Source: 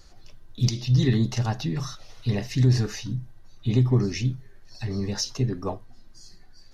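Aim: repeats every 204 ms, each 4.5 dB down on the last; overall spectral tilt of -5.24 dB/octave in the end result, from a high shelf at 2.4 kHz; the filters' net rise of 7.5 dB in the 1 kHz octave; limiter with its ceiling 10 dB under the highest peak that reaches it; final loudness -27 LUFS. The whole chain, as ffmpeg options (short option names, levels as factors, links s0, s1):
-af "equalizer=f=1000:t=o:g=9,highshelf=f=2400:g=4.5,alimiter=limit=0.158:level=0:latency=1,aecho=1:1:204|408|612|816|1020|1224|1428|1632|1836:0.596|0.357|0.214|0.129|0.0772|0.0463|0.0278|0.0167|0.01,volume=0.944"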